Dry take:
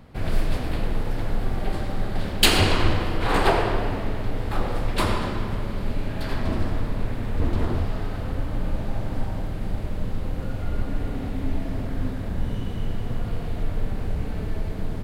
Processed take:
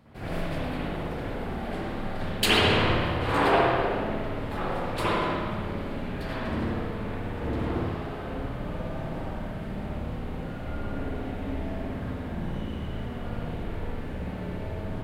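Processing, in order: HPF 100 Hz 6 dB/oct; reverb RT60 0.95 s, pre-delay 56 ms, DRR -7 dB; gain -8 dB

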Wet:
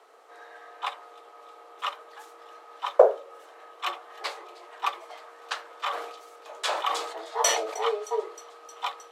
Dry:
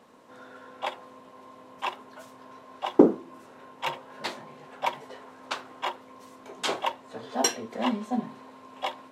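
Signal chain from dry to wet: thin delay 0.311 s, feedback 78%, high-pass 3700 Hz, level -18 dB; frequency shift +210 Hz; 5.82–7.82 sustainer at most 62 dB/s

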